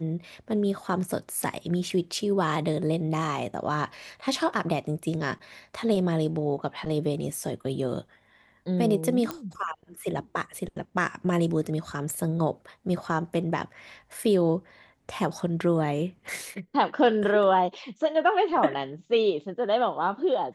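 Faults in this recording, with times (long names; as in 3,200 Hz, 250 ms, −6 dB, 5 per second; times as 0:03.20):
0:09.31: click −16 dBFS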